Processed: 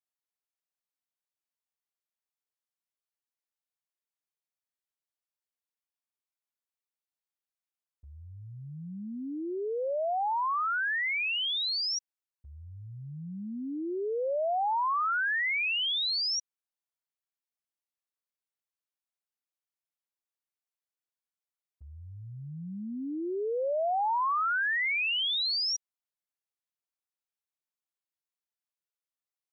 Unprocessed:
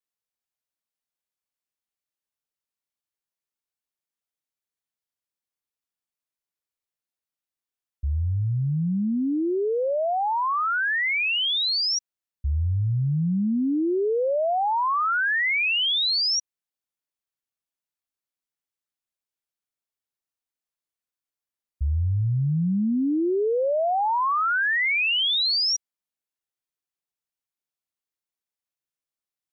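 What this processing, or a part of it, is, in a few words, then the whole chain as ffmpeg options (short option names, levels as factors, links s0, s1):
filter by subtraction: -filter_complex "[0:a]asplit=2[s0][s1];[s1]lowpass=740,volume=-1[s2];[s0][s2]amix=inputs=2:normalize=0,volume=0.447"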